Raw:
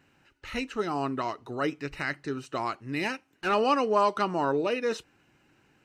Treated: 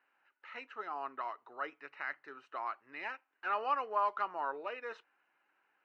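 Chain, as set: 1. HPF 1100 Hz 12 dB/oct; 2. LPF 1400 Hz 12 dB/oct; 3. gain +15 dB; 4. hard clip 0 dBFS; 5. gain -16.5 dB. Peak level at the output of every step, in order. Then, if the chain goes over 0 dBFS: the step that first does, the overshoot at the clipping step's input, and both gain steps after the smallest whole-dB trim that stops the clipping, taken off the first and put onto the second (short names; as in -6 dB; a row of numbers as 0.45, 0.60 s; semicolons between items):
-16.0, -18.5, -3.5, -3.5, -20.0 dBFS; no overload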